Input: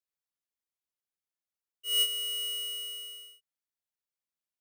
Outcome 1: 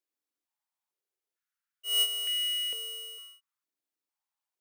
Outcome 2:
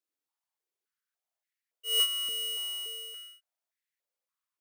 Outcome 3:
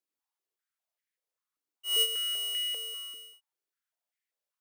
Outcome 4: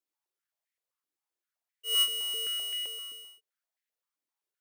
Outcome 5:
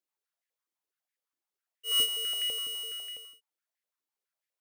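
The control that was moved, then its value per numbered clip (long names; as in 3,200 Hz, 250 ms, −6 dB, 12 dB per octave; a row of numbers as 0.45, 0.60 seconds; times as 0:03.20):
high-pass on a step sequencer, speed: 2.2, 3.5, 5.1, 7.7, 12 Hertz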